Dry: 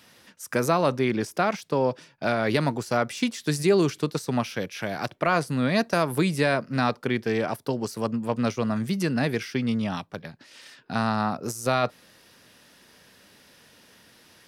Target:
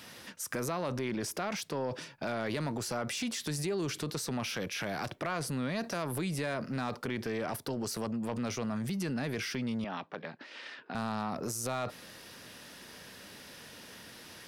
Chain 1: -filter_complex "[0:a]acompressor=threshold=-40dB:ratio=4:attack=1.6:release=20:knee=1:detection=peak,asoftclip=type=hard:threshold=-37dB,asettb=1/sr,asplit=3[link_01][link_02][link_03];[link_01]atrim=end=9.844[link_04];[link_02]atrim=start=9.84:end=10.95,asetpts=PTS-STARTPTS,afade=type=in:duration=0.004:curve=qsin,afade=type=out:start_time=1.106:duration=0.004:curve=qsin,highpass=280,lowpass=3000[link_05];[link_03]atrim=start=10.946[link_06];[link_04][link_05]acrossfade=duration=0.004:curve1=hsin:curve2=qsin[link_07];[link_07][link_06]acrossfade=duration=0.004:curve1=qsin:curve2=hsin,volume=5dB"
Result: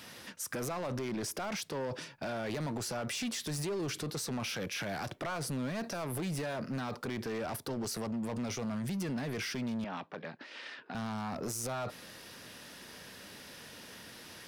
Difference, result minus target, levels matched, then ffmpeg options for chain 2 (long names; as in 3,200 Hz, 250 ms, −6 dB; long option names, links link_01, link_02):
hard clipping: distortion +22 dB
-filter_complex "[0:a]acompressor=threshold=-40dB:ratio=4:attack=1.6:release=20:knee=1:detection=peak,asoftclip=type=hard:threshold=-27.5dB,asettb=1/sr,asplit=3[link_01][link_02][link_03];[link_01]atrim=end=9.844[link_04];[link_02]atrim=start=9.84:end=10.95,asetpts=PTS-STARTPTS,afade=type=in:duration=0.004:curve=qsin,afade=type=out:start_time=1.106:duration=0.004:curve=qsin,highpass=280,lowpass=3000[link_05];[link_03]atrim=start=10.946[link_06];[link_04][link_05]acrossfade=duration=0.004:curve1=hsin:curve2=qsin[link_07];[link_07][link_06]acrossfade=duration=0.004:curve1=qsin:curve2=hsin,volume=5dB"